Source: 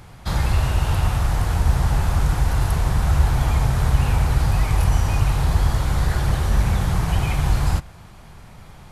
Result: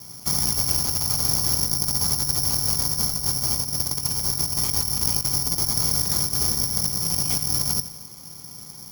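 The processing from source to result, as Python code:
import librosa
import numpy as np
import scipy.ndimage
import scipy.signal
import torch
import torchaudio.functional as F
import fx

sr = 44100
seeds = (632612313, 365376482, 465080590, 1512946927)

p1 = fx.lower_of_two(x, sr, delay_ms=0.91)
p2 = scipy.signal.sosfilt(scipy.signal.butter(2, 180.0, 'highpass', fs=sr, output='sos'), p1)
p3 = fx.tilt_shelf(p2, sr, db=7.0, hz=760.0)
p4 = fx.over_compress(p3, sr, threshold_db=-26.0, ratio=-0.5)
p5 = p4 + fx.echo_feedback(p4, sr, ms=85, feedback_pct=55, wet_db=-15.0, dry=0)
p6 = (np.kron(p5[::8], np.eye(8)[0]) * 8)[:len(p5)]
y = F.gain(torch.from_numpy(p6), -6.0).numpy()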